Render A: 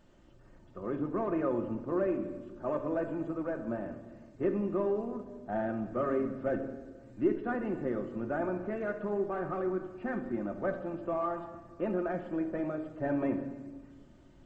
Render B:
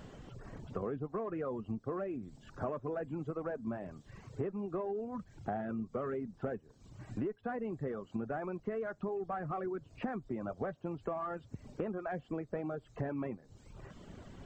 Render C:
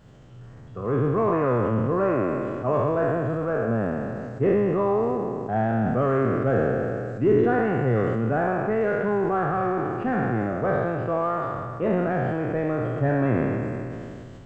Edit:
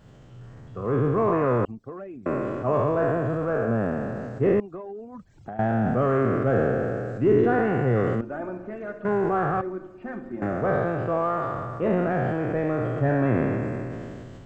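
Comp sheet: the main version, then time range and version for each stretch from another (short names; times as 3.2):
C
1.65–2.26 from B
4.6–5.59 from B
8.21–9.05 from A
9.61–10.42 from A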